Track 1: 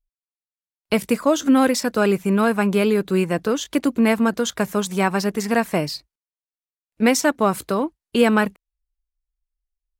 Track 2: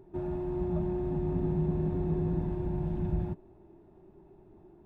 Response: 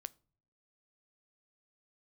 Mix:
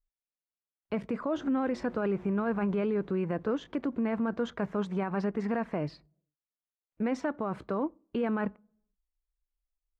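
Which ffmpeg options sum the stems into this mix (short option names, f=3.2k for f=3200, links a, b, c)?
-filter_complex "[0:a]lowpass=1.6k,volume=-7.5dB,asplit=2[a][b];[b]volume=-3.5dB[c];[1:a]asoftclip=type=hard:threshold=-39.5dB,adelay=1200,volume=-9dB,afade=t=out:st=2.74:d=0.4:silence=0.237137[d];[2:a]atrim=start_sample=2205[e];[c][e]afir=irnorm=-1:irlink=0[f];[a][d][f]amix=inputs=3:normalize=0,alimiter=limit=-22.5dB:level=0:latency=1:release=39"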